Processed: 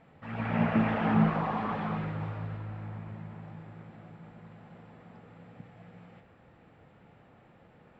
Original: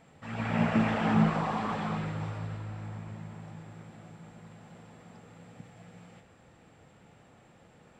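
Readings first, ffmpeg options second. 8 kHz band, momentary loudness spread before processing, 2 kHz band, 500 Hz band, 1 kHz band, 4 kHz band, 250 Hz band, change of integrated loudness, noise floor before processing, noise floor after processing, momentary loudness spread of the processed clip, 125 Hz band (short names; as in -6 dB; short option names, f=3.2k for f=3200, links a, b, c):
n/a, 23 LU, -1.0 dB, 0.0 dB, 0.0 dB, -5.0 dB, 0.0 dB, 0.0 dB, -59 dBFS, -59 dBFS, 23 LU, 0.0 dB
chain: -af "lowpass=2.7k"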